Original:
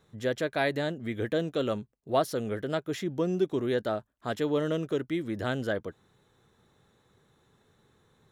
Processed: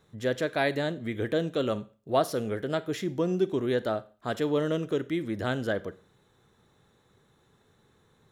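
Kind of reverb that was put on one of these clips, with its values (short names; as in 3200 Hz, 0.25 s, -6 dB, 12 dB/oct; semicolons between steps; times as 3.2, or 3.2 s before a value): Schroeder reverb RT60 0.39 s, combs from 32 ms, DRR 16 dB; gain +1 dB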